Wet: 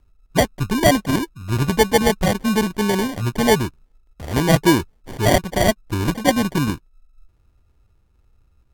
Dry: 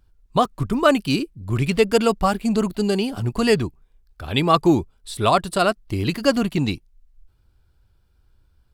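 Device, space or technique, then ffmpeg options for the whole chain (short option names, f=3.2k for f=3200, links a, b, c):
crushed at another speed: -af "asetrate=55125,aresample=44100,acrusher=samples=27:mix=1:aa=0.000001,asetrate=35280,aresample=44100,volume=1.5dB"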